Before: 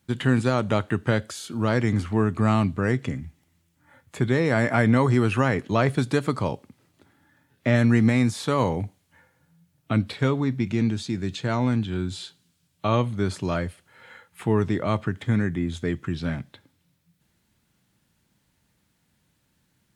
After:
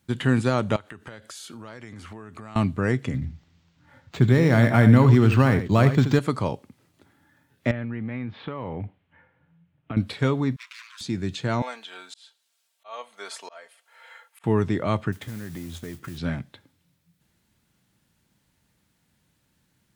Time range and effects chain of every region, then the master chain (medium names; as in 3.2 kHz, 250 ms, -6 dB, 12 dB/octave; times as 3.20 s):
0.76–2.56 s: bass shelf 400 Hz -9.5 dB + compression 12:1, threshold -36 dBFS
3.14–6.19 s: tone controls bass +7 dB, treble +7 dB + delay 79 ms -10.5 dB + decimation joined by straight lines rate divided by 4×
7.71–9.97 s: block-companded coder 7-bit + steep low-pass 3.1 kHz + compression 10:1, threshold -27 dBFS
10.56–11.01 s: comb filter that takes the minimum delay 8.5 ms + rippled Chebyshev high-pass 1 kHz, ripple 3 dB
11.62–14.44 s: Chebyshev high-pass 610 Hz, order 3 + comb 4.4 ms, depth 50% + slow attack 462 ms
15.12–16.18 s: CVSD coder 64 kbps + compression, threshold -32 dBFS + modulation noise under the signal 15 dB
whole clip: none